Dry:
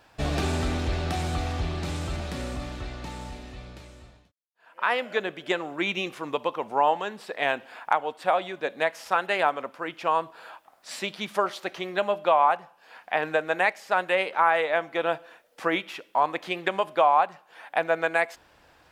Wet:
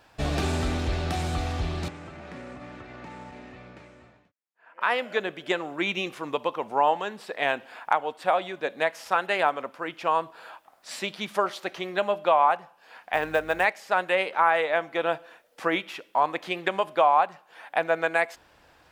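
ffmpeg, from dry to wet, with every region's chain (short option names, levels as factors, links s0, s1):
-filter_complex "[0:a]asettb=1/sr,asplit=3[s0][s1][s2];[s0]atrim=end=1.884[s3];[s1]atrim=start=1.88:end=4.81,asetpts=PTS-STARTPTS,afade=t=in:d=0.004:c=qsin,afade=t=out:st=2.926:d=0.004:c=qsin,highshelf=f=2800:t=q:w=1.5:g=-7.5,acompressor=threshold=0.0178:ratio=4:attack=3.2:release=140:knee=1:detection=peak,highpass=140,lowpass=7600[s4];[s2]atrim=start=4.806[s5];[s3][s4]acrossfade=d=0.004:c1=hsin:c2=qsin[s6];[s6][s5]acrossfade=d=0.004:c1=qsin:c2=hsin,asettb=1/sr,asplit=3[s7][s8][s9];[s7]atrim=end=13.134[s10];[s8]atrim=start=13.13:end=13.65,asetpts=PTS-STARTPTS,afade=t=in:d=0.004:c=qsin,afade=t=out:st=0.516:d=0.004:c=qsin,aeval=exprs='val(0)+0.00355*(sin(2*PI*50*n/s)+sin(2*PI*2*50*n/s)/2+sin(2*PI*3*50*n/s)/3+sin(2*PI*4*50*n/s)/4+sin(2*PI*5*50*n/s)/5)':c=same,acrusher=bits=7:mode=log:mix=0:aa=0.000001[s11];[s9]atrim=start=13.646[s12];[s10][s11]acrossfade=d=0.004:c1=hsin:c2=qsin[s13];[s13][s12]acrossfade=d=0.004:c1=qsin:c2=hsin"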